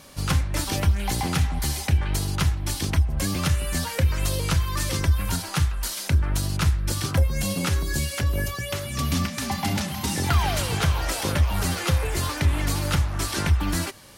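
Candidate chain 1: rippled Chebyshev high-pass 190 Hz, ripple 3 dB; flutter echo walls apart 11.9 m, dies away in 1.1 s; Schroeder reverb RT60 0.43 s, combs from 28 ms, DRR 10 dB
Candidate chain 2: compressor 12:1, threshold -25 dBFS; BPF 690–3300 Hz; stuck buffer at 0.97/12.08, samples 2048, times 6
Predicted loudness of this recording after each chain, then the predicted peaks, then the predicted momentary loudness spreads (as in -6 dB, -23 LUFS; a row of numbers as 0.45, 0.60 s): -28.0, -37.5 LUFS; -11.5, -16.0 dBFS; 4, 5 LU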